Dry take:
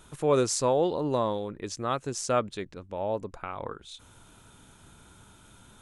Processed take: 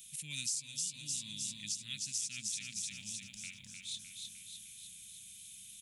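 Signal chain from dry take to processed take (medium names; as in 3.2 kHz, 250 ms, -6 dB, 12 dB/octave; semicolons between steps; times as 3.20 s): elliptic band-stop 200–2400 Hz, stop band 40 dB; tilt EQ +4 dB/octave; on a send: feedback delay 305 ms, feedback 58%, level -5 dB; on the sum: compression 6:1, threshold -31 dBFS, peak gain reduction 14.5 dB; trim -4 dB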